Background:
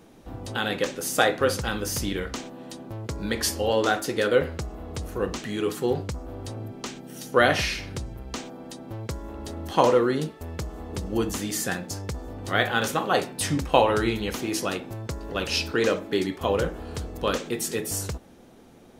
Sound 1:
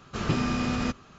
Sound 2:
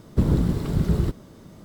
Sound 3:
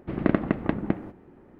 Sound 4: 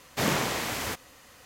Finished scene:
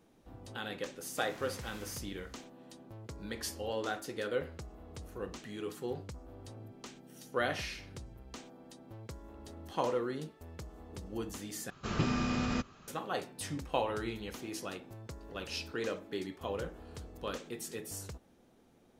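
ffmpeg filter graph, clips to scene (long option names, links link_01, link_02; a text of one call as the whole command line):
ffmpeg -i bed.wav -i cue0.wav -i cue1.wav -i cue2.wav -i cue3.wav -filter_complex "[0:a]volume=-13.5dB[link_01];[4:a]acompressor=threshold=-33dB:ratio=6:attack=3.2:release=140:knee=1:detection=peak[link_02];[link_01]asplit=2[link_03][link_04];[link_03]atrim=end=11.704[link_05];[1:a]atrim=end=1.18,asetpts=PTS-STARTPTS,volume=-5dB[link_06];[link_04]atrim=start=12.876[link_07];[link_02]atrim=end=1.45,asetpts=PTS-STARTPTS,volume=-15.5dB,afade=type=in:duration=0.004:curve=hsin,afade=type=out:start_time=1.446:duration=0.004:curve=hsin,adelay=1000[link_08];[link_05][link_06]acrossfade=duration=0.004:curve1=hsin:curve2=hsin[link_09];[link_09][link_07]acrossfade=duration=0.004:curve1=hsin:curve2=hsin[link_10];[link_10][link_08]amix=inputs=2:normalize=0" out.wav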